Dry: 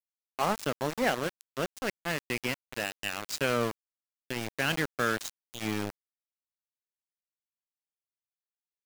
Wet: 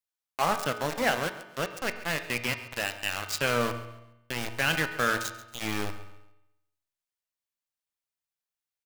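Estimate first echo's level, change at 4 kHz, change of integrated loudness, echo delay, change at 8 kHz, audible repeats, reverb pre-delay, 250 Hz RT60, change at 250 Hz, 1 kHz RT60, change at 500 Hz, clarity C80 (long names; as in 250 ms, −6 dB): −16.0 dB, +3.5 dB, +2.5 dB, 137 ms, +3.0 dB, 2, 3 ms, 0.95 s, −1.0 dB, 0.90 s, +0.5 dB, 11.5 dB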